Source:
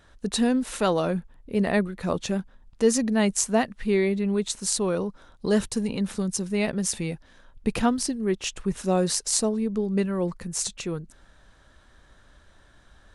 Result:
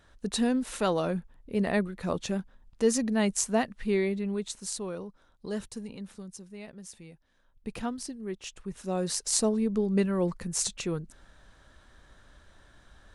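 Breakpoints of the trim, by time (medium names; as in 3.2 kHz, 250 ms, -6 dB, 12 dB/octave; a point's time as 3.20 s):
3.93 s -4 dB
5.08 s -12 dB
5.75 s -12 dB
6.61 s -19 dB
7.11 s -19 dB
7.79 s -11 dB
8.71 s -11 dB
9.48 s -1 dB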